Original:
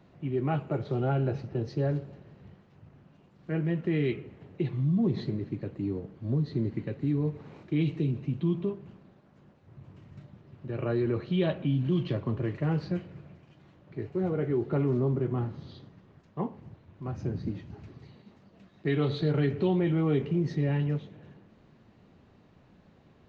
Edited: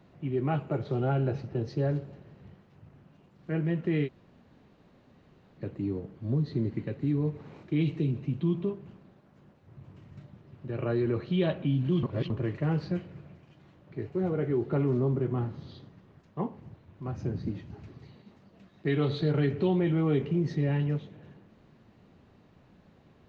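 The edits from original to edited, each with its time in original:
4.06–5.60 s: room tone, crossfade 0.06 s
12.03–12.30 s: reverse

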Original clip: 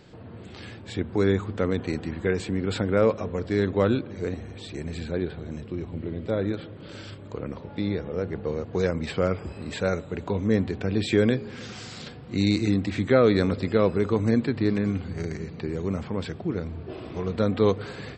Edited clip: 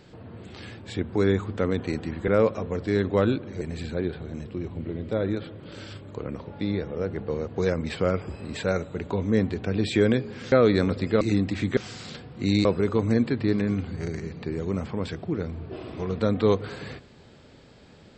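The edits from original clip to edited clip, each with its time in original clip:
2.28–2.91 s: delete
4.24–4.78 s: delete
11.69–12.57 s: swap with 13.13–13.82 s

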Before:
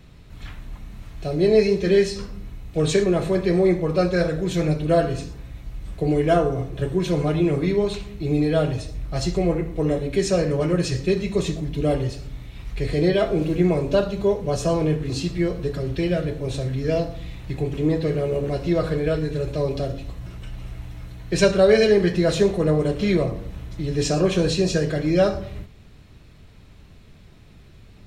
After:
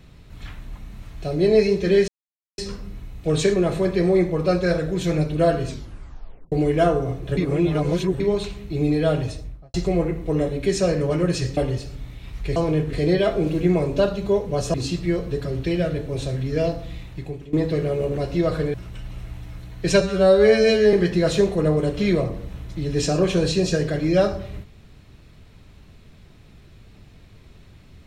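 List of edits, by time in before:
2.08 s: insert silence 0.50 s
5.17 s: tape stop 0.85 s
6.87–7.70 s: reverse
8.81–9.24 s: studio fade out
11.07–11.89 s: delete
14.69–15.06 s: move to 12.88 s
17.28–17.85 s: fade out, to -18 dB
19.06–20.22 s: delete
21.49–21.95 s: stretch 2×

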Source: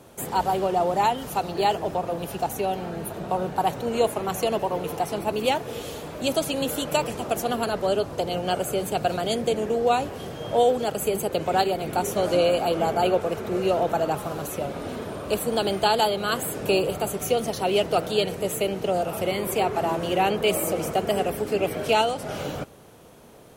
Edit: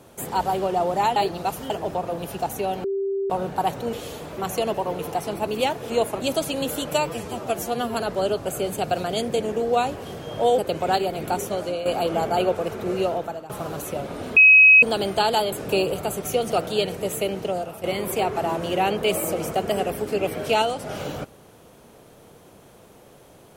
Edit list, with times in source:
1.16–1.70 s: reverse
2.84–3.30 s: bleep 392 Hz -22 dBFS
3.93–4.23 s: swap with 5.75–6.20 s
6.94–7.61 s: stretch 1.5×
8.12–8.59 s: delete
10.72–11.24 s: delete
11.98–12.51 s: fade out linear, to -11.5 dB
13.64–14.15 s: fade out, to -20 dB
15.02–15.48 s: bleep 2.55 kHz -8 dBFS
16.18–16.49 s: delete
17.48–17.91 s: delete
18.79–19.23 s: fade out, to -11.5 dB

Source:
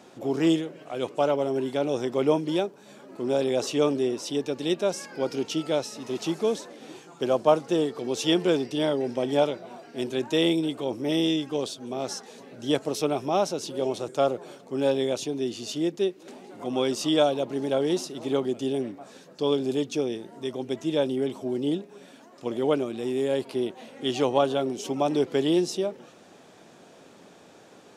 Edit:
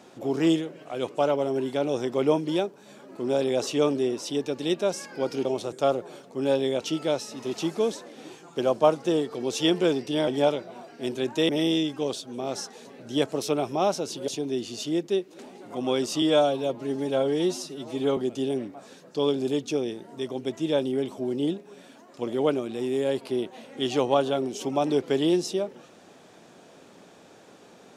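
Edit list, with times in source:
8.91–9.22 s: delete
10.44–11.02 s: delete
13.81–15.17 s: move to 5.45 s
17.11–18.41 s: stretch 1.5×

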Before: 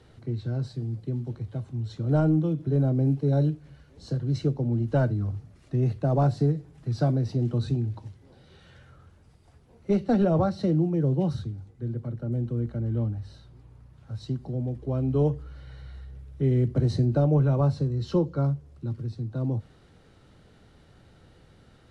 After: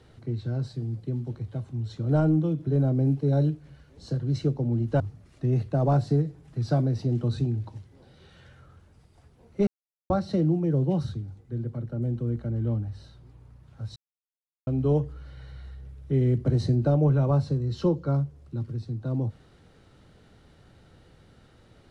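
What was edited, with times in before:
5.00–5.30 s: delete
9.97–10.40 s: mute
14.26–14.97 s: mute

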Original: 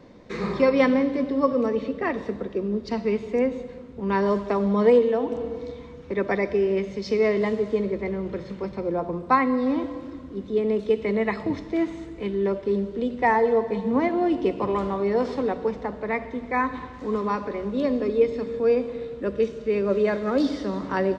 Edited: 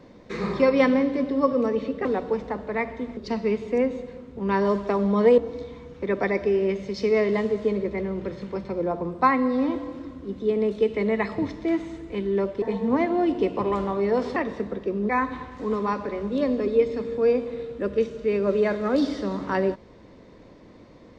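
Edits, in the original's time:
2.05–2.78 s: swap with 15.39–16.51 s
4.99–5.46 s: delete
12.70–13.65 s: delete

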